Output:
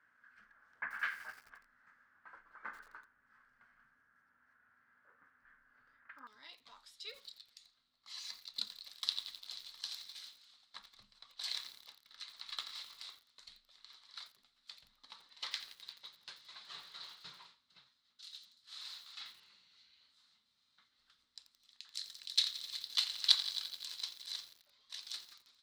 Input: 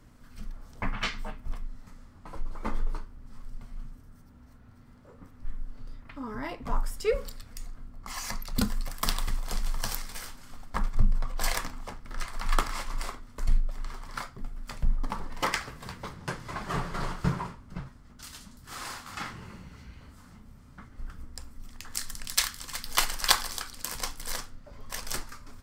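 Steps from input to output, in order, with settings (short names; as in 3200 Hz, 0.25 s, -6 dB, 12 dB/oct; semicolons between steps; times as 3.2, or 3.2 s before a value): band-pass 1600 Hz, Q 8.3, from 6.27 s 3900 Hz; lo-fi delay 86 ms, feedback 80%, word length 9-bit, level -13 dB; gain +5 dB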